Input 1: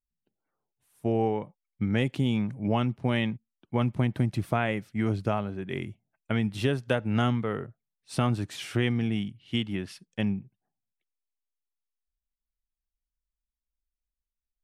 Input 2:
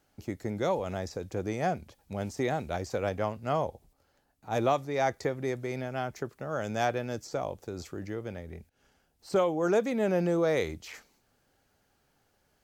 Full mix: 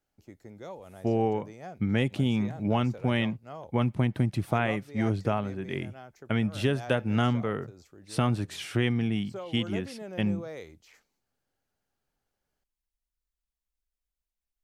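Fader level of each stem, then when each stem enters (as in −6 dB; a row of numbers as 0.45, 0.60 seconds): 0.0, −13.5 decibels; 0.00, 0.00 seconds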